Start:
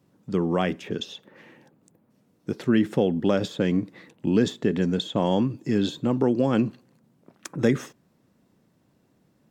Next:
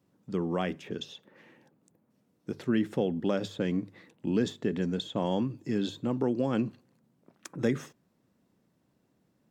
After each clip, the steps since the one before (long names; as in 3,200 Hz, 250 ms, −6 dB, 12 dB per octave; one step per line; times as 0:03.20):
mains-hum notches 50/100/150 Hz
level −6.5 dB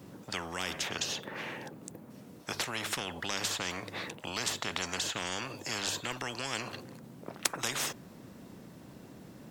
every bin compressed towards the loudest bin 10 to 1
level +5.5 dB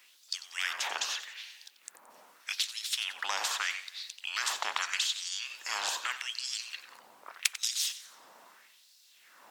auto-filter high-pass sine 0.81 Hz 830–4,600 Hz
feedback echo with a swinging delay time 90 ms, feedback 47%, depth 171 cents, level −14 dB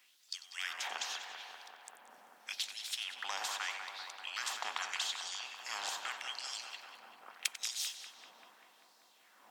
hollow resonant body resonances 230/750/3,200 Hz, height 6 dB
on a send: feedback echo with a low-pass in the loop 195 ms, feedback 83%, low-pass 2,500 Hz, level −6.5 dB
on the sum: level −7 dB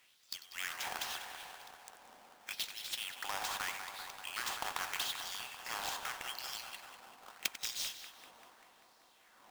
each half-wave held at its own peak
level −4 dB